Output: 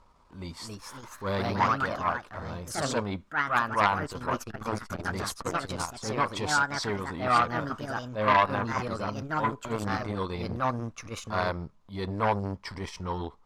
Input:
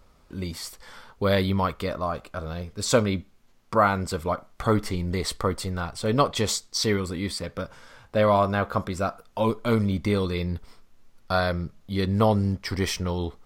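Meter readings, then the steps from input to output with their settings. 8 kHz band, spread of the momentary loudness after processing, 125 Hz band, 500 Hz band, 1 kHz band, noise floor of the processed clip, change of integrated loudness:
-6.0 dB, 14 LU, -7.5 dB, -7.0 dB, +1.0 dB, -57 dBFS, -3.5 dB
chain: transient shaper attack -10 dB, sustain -6 dB; LPF 9200 Hz 12 dB/oct; bell 980 Hz +13.5 dB 0.49 oct; echoes that change speed 0.34 s, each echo +3 st, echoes 2; core saturation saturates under 1700 Hz; gain -4 dB

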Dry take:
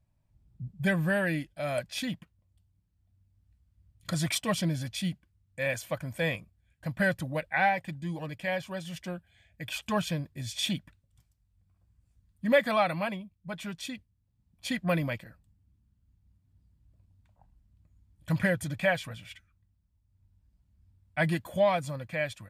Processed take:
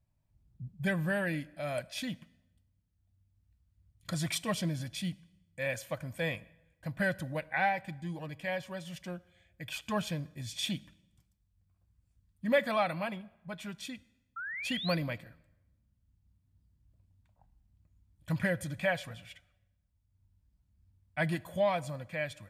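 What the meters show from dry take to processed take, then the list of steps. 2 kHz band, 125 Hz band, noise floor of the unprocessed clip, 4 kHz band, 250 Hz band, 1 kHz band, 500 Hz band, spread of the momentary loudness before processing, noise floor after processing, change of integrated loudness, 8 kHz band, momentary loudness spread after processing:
-4.0 dB, -4.0 dB, -73 dBFS, -3.0 dB, -4.0 dB, -4.0 dB, -4.0 dB, 14 LU, -76 dBFS, -4.0 dB, -4.0 dB, 14 LU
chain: painted sound rise, 14.36–14.95, 1300–4800 Hz -35 dBFS; plate-style reverb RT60 1 s, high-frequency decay 0.8×, DRR 19.5 dB; gain -4 dB

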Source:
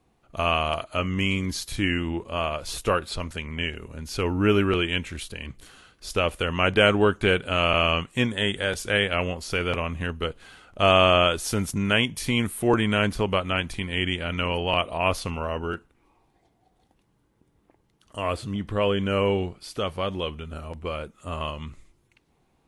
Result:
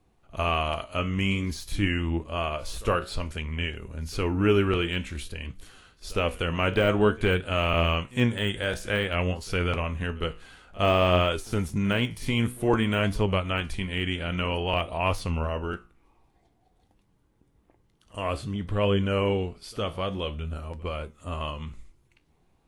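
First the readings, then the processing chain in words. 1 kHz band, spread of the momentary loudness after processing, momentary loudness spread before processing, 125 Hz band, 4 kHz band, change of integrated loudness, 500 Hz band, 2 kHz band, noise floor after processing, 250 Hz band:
-3.0 dB, 12 LU, 13 LU, +1.0 dB, -5.0 dB, -2.5 dB, -2.5 dB, -4.0 dB, -66 dBFS, -1.0 dB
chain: de-esser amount 70%; low shelf 71 Hz +10 dB; flange 0.53 Hz, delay 9.4 ms, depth 9.5 ms, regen +70%; pre-echo 61 ms -22.5 dB; gain +2 dB

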